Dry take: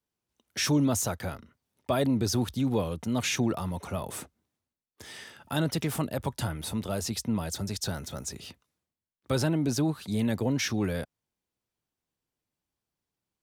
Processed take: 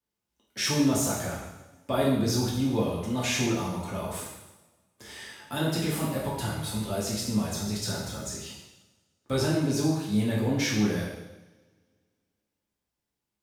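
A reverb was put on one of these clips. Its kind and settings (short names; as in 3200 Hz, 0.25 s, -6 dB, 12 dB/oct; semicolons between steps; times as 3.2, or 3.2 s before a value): two-slope reverb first 0.96 s, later 2.4 s, from -25 dB, DRR -6 dB; gain -5 dB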